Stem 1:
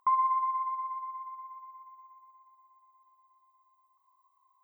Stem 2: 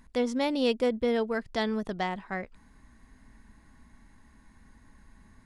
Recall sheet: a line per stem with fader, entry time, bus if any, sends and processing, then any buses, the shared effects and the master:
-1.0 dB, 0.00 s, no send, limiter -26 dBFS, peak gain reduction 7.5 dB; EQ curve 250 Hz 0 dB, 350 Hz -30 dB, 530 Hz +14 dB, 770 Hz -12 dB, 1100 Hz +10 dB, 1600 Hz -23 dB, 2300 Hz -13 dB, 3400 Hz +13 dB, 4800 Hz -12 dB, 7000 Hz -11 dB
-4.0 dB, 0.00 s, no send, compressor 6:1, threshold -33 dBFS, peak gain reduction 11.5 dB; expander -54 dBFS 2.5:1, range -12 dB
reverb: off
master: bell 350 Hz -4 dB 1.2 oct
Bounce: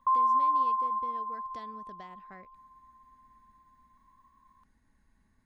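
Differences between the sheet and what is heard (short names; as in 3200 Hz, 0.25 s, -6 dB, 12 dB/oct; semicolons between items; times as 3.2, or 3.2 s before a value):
stem 2 -4.0 dB -> -13.0 dB; master: missing bell 350 Hz -4 dB 1.2 oct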